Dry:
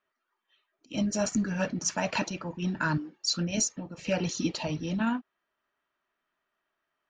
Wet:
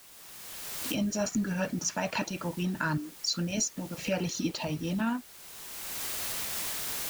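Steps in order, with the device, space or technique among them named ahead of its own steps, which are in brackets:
cheap recorder with automatic gain (white noise bed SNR 20 dB; camcorder AGC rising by 22 dB per second)
level −2 dB

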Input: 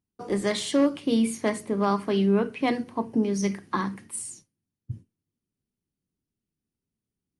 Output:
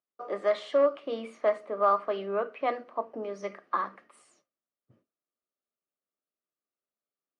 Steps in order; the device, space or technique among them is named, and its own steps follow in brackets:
tin-can telephone (band-pass filter 490–2,800 Hz; hollow resonant body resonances 610/1,200 Hz, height 14 dB, ringing for 20 ms)
level −6.5 dB

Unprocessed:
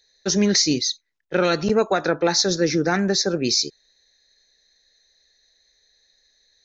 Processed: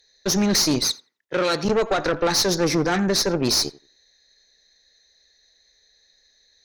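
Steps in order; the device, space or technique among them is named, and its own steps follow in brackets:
rockabilly slapback (tube saturation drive 20 dB, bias 0.6; tape delay 87 ms, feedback 21%, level −17.5 dB, low-pass 2,400 Hz)
0:00.88–0:01.65: high-pass filter 220 Hz 6 dB per octave
level +5 dB

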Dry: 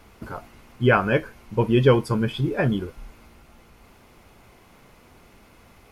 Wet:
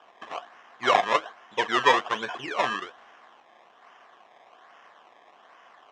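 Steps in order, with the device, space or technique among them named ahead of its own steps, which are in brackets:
circuit-bent sampling toy (sample-and-hold swept by an LFO 21×, swing 100% 1.2 Hz; loudspeaker in its box 550–5,800 Hz, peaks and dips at 720 Hz +9 dB, 1,100 Hz +9 dB, 1,700 Hz +9 dB, 3,100 Hz +8 dB, 4,500 Hz −8 dB)
level −3 dB

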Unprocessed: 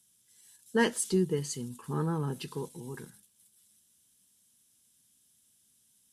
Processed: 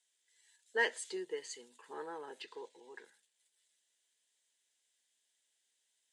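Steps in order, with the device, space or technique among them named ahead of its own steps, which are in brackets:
phone speaker on a table (loudspeaker in its box 450–7,400 Hz, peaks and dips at 1,200 Hz −9 dB, 1,900 Hz +8 dB, 5,600 Hz −8 dB)
0:02.42–0:03.05: low-pass filter 6,200 Hz 12 dB per octave
level −4.5 dB

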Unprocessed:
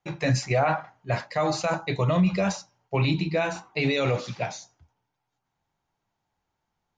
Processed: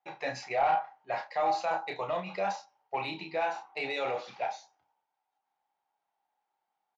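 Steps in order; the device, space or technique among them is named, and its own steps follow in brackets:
intercom (band-pass filter 460–4,100 Hz; parametric band 800 Hz +11.5 dB 0.29 octaves; soft clipping −14 dBFS, distortion −18 dB; double-tracking delay 31 ms −7 dB)
level −6.5 dB

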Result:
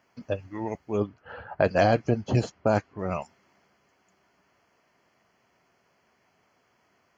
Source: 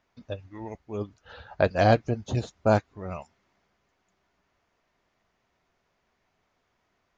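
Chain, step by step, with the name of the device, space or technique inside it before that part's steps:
PA system with an anti-feedback notch (high-pass filter 110 Hz 12 dB per octave; Butterworth band-reject 3,700 Hz, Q 5.4; brickwall limiter −17.5 dBFS, peak gain reduction 10 dB)
0:01.00–0:02.99: low-pass that shuts in the quiet parts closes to 1,500 Hz, open at −23.5 dBFS
level +6.5 dB

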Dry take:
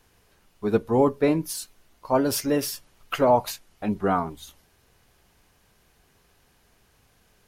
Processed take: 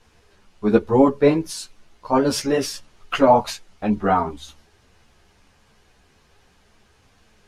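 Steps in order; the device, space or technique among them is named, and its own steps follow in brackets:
string-machine ensemble chorus (string-ensemble chorus; low-pass filter 7,200 Hz 12 dB per octave)
level +8 dB

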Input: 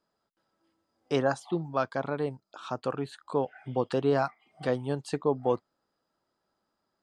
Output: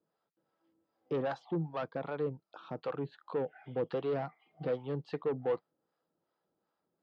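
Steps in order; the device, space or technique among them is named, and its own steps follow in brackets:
guitar amplifier with harmonic tremolo (two-band tremolo in antiphase 2.6 Hz, depth 70%, crossover 570 Hz; soft clipping −29.5 dBFS, distortion −9 dB; loudspeaker in its box 77–4,100 Hz, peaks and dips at 160 Hz +8 dB, 320 Hz +5 dB, 480 Hz +8 dB, 790 Hz +3 dB)
level −3 dB

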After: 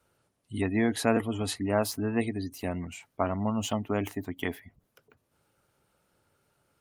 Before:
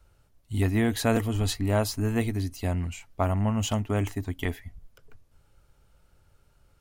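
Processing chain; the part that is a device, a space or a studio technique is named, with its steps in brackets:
0:02.50–0:03.39: dynamic equaliser 810 Hz, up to −4 dB, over −47 dBFS, Q 6.2
noise-suppressed video call (high-pass filter 170 Hz 12 dB per octave; gate on every frequency bin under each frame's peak −30 dB strong; Opus 32 kbit/s 48,000 Hz)

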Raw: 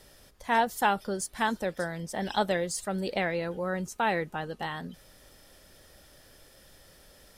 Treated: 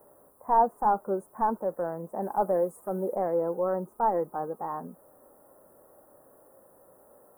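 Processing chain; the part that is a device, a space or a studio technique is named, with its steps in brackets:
tape answering machine (band-pass filter 400–3,400 Hz; soft clipping −21 dBFS, distortion −13 dB; tape wow and flutter 22 cents; white noise bed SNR 30 dB)
Chebyshev band-stop filter 1,100–9,900 Hz, order 3
low-shelf EQ 410 Hz +4.5 dB
harmonic and percussive parts rebalanced harmonic +7 dB
0:02.22–0:03.16: parametric band 14,000 Hz +7.5 dB 1.5 octaves

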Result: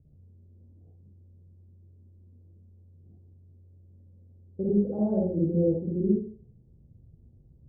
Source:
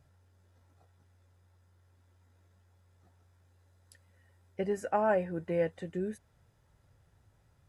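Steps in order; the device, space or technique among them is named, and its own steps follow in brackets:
next room (low-pass filter 380 Hz 24 dB per octave; convolution reverb RT60 0.45 s, pre-delay 44 ms, DRR −6.5 dB)
level +5 dB

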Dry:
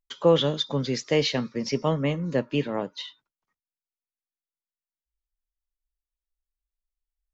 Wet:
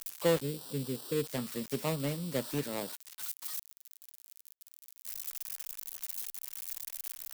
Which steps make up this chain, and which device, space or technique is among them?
0:00.41–0:01.27: Chebyshev low-pass filter 520 Hz, order 8
budget class-D amplifier (gap after every zero crossing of 0.22 ms; spike at every zero crossing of −16.5 dBFS)
level −8.5 dB

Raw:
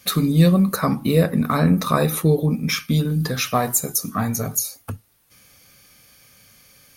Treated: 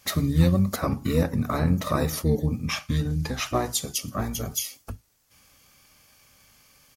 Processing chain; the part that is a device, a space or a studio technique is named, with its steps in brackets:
octave pedal (pitch-shifted copies added −12 semitones −2 dB)
0:02.68–0:04.08: low-pass filter 11,000 Hz 12 dB per octave
level −7.5 dB

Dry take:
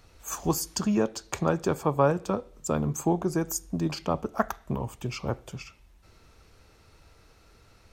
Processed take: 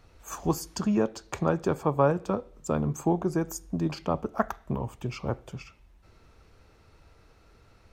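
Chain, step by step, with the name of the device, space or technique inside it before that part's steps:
behind a face mask (high-shelf EQ 3,400 Hz −8 dB)

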